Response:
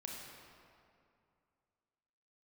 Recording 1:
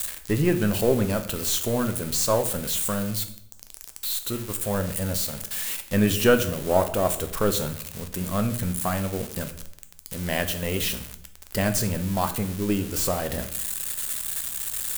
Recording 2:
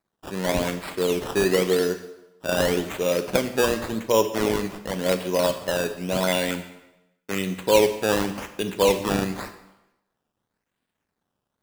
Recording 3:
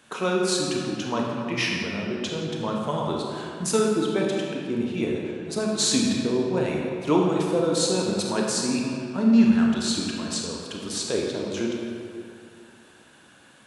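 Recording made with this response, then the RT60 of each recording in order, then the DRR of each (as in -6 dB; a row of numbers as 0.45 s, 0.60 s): 3; 0.65 s, 0.90 s, 2.4 s; 7.5 dB, 8.5 dB, -1.5 dB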